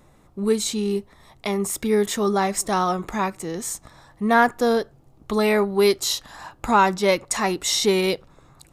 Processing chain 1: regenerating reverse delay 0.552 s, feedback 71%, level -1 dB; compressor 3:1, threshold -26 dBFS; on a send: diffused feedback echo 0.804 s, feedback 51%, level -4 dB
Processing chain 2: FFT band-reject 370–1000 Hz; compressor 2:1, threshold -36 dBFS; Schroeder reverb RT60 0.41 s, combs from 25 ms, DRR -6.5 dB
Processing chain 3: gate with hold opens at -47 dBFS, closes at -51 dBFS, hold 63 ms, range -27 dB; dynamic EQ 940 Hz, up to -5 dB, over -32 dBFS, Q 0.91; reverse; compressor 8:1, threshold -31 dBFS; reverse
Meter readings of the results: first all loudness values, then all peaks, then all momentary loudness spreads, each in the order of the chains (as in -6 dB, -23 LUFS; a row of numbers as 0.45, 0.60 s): -25.0, -26.5, -35.0 LUFS; -11.5, -12.0, -18.5 dBFS; 4, 13, 9 LU